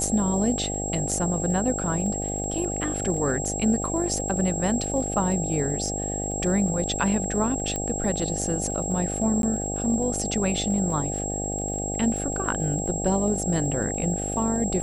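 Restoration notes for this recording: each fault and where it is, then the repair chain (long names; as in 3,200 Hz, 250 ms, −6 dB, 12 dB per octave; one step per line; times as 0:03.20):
mains buzz 50 Hz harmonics 16 −31 dBFS
surface crackle 22 per second −34 dBFS
whistle 7,600 Hz −30 dBFS
0:07.76: click −14 dBFS
0:09.42–0:09.43: drop-out 12 ms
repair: click removal
hum removal 50 Hz, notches 16
notch filter 7,600 Hz, Q 30
repair the gap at 0:09.42, 12 ms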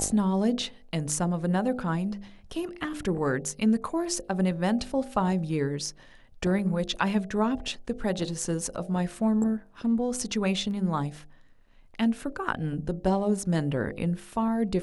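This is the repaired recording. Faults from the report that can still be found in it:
none of them is left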